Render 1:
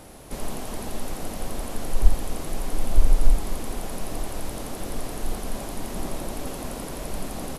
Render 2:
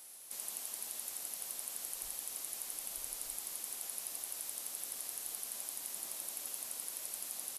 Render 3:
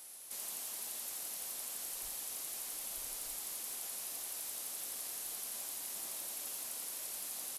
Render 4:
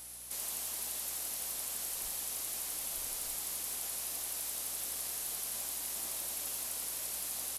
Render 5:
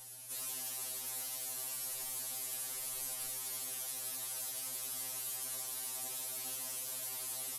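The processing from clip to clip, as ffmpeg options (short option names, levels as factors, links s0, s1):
-af "aderivative,volume=0.841"
-af "asoftclip=type=hard:threshold=0.0141,volume=1.19"
-af "aeval=exprs='val(0)+0.000447*(sin(2*PI*60*n/s)+sin(2*PI*2*60*n/s)/2+sin(2*PI*3*60*n/s)/3+sin(2*PI*4*60*n/s)/4+sin(2*PI*5*60*n/s)/5)':c=same,volume=1.58"
-af "afftfilt=real='re*2.45*eq(mod(b,6),0)':imag='im*2.45*eq(mod(b,6),0)':win_size=2048:overlap=0.75"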